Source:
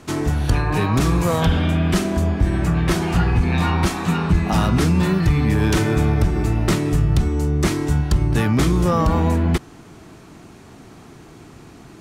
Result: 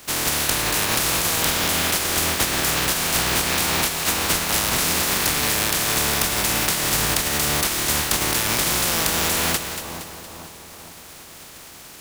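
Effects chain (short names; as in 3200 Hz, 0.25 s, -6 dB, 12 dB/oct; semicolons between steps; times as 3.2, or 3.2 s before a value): spectral contrast lowered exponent 0.19; compressor, threshold -18 dBFS, peak gain reduction 8 dB; on a send: split-band echo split 1200 Hz, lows 0.455 s, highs 0.233 s, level -9 dB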